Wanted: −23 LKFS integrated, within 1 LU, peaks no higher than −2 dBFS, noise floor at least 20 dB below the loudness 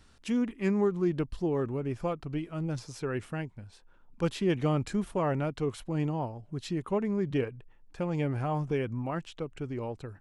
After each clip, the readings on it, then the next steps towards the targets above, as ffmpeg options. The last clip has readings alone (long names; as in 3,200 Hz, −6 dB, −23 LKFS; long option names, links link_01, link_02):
integrated loudness −32.0 LKFS; sample peak −16.0 dBFS; target loudness −23.0 LKFS
→ -af "volume=9dB"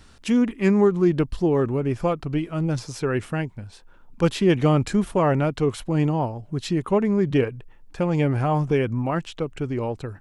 integrated loudness −23.0 LKFS; sample peak −7.0 dBFS; background noise floor −50 dBFS